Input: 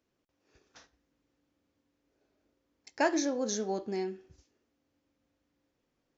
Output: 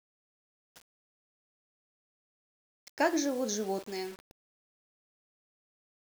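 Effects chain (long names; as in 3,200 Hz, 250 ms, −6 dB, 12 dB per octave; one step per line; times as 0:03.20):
0:03.79–0:04.19: spectral tilt +3 dB per octave
bit-depth reduction 8 bits, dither none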